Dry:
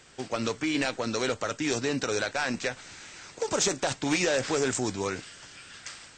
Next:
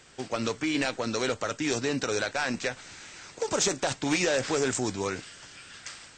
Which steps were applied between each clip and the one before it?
nothing audible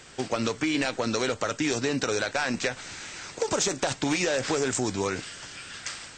compressor, threshold -29 dBFS, peak gain reduction 7.5 dB; gain +6 dB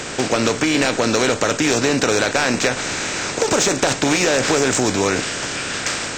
per-bin compression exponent 0.6; in parallel at -9 dB: overloaded stage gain 25 dB; on the sum: gain +4.5 dB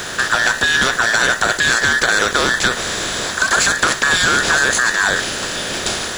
band inversion scrambler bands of 2000 Hz; in parallel at -3 dB: requantised 6-bit, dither none; on the sum: gain -2.5 dB

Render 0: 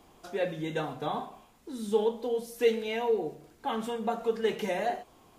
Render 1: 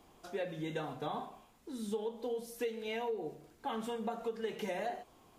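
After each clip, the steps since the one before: compressor 12:1, threshold -29 dBFS, peak gain reduction 11.5 dB; gain -4 dB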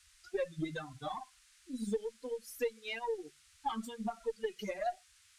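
per-bin expansion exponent 3; added harmonics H 6 -29 dB, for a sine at -29.5 dBFS; band noise 1300–10000 Hz -72 dBFS; gain +6.5 dB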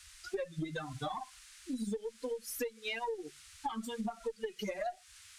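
compressor 6:1, threshold -44 dBFS, peak gain reduction 14.5 dB; gain +9 dB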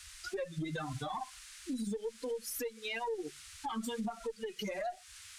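limiter -34 dBFS, peak gain reduction 8.5 dB; gain +4 dB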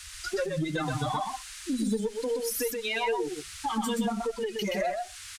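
echo 0.125 s -4 dB; gain +7.5 dB

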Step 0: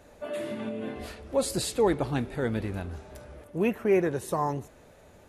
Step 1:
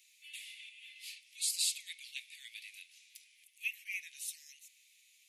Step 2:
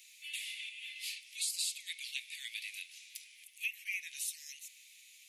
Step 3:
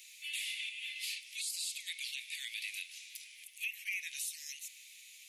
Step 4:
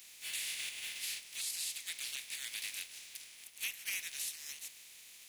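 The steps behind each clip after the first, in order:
steep high-pass 2200 Hz 72 dB/oct; gain +1 dB
compressor 3:1, threshold -44 dBFS, peak gain reduction 11.5 dB; gain +7.5 dB
limiter -32 dBFS, peak gain reduction 10 dB; gain +3.5 dB
spectral contrast lowered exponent 0.4

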